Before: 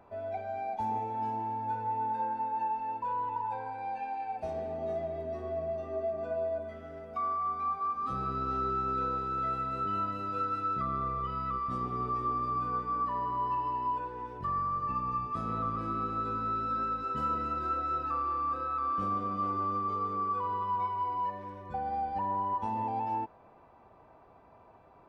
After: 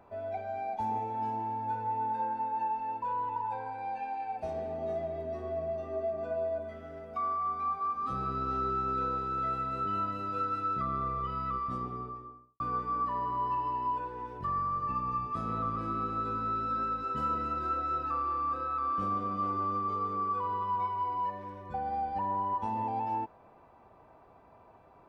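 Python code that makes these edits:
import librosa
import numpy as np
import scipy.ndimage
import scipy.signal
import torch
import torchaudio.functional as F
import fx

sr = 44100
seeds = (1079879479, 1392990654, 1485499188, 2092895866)

y = fx.studio_fade_out(x, sr, start_s=11.54, length_s=1.06)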